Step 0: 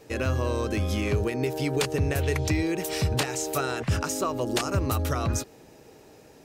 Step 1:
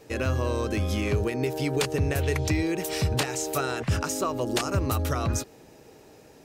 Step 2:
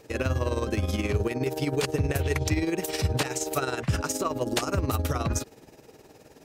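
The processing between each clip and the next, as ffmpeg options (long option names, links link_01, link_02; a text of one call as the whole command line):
ffmpeg -i in.wav -af anull out.wav
ffmpeg -i in.wav -filter_complex "[0:a]tremolo=f=19:d=0.65,asplit=2[link_01][link_02];[link_02]asoftclip=type=tanh:threshold=-23dB,volume=-9dB[link_03];[link_01][link_03]amix=inputs=2:normalize=0" out.wav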